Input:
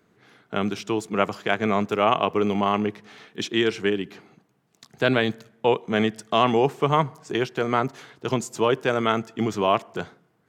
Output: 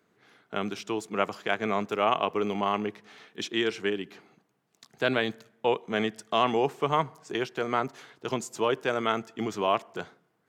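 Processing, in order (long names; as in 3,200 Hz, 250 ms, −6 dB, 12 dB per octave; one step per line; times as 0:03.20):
low-shelf EQ 180 Hz −9 dB
level −4 dB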